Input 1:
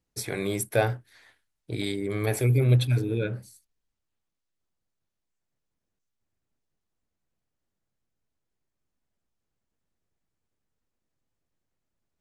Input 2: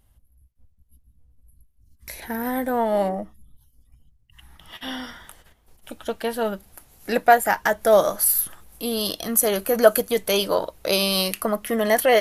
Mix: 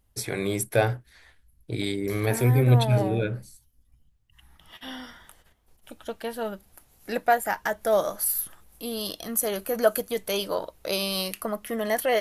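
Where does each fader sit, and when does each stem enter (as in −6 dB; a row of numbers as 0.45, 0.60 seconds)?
+1.5, −6.5 decibels; 0.00, 0.00 seconds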